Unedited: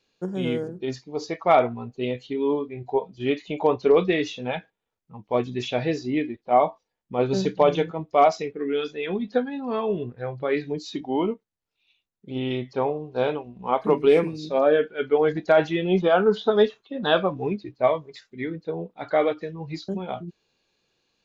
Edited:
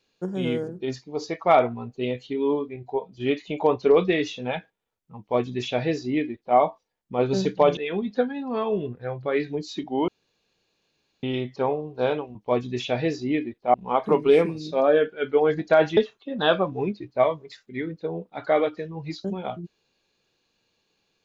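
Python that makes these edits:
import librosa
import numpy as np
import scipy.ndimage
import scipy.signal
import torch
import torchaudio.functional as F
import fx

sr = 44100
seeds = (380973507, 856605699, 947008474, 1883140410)

y = fx.edit(x, sr, fx.clip_gain(start_s=2.76, length_s=0.36, db=-3.5),
    fx.duplicate(start_s=5.18, length_s=1.39, to_s=13.52),
    fx.cut(start_s=7.77, length_s=1.17),
    fx.room_tone_fill(start_s=11.25, length_s=1.15),
    fx.cut(start_s=15.75, length_s=0.86), tone=tone)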